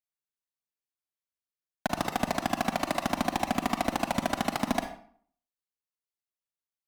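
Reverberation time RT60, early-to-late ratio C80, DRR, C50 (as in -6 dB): 0.55 s, 12.0 dB, 6.0 dB, 8.0 dB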